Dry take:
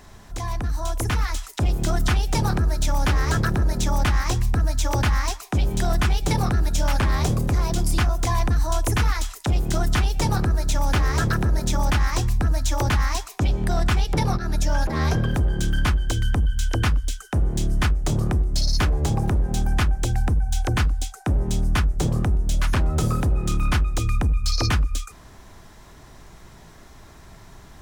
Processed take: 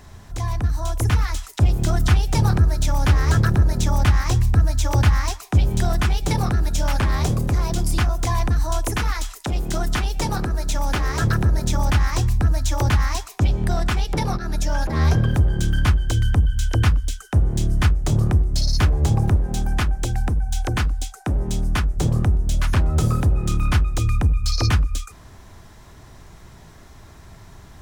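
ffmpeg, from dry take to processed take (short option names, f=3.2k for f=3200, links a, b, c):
-af "asetnsamples=n=441:p=0,asendcmd='5.88 equalizer g 2;8.81 equalizer g -6;11.21 equalizer g 5.5;13.75 equalizer g -3;14.88 equalizer g 7;19.37 equalizer g -1;21.97 equalizer g 5.5',equalizer=f=92:t=o:w=1.1:g=8.5"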